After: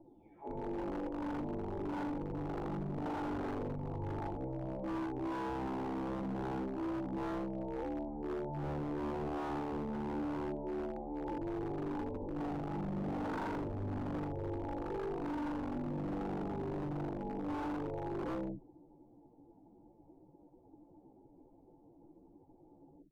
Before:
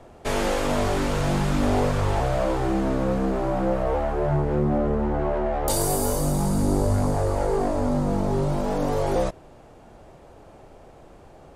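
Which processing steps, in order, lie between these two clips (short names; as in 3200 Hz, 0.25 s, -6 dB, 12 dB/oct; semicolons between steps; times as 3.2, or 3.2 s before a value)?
spectral delay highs early, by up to 0.488 s; plain phase-vocoder stretch 2×; vocal tract filter u; wavefolder -33 dBFS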